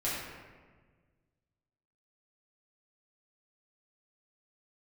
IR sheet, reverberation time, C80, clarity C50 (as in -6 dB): 1.5 s, 1.5 dB, -1.0 dB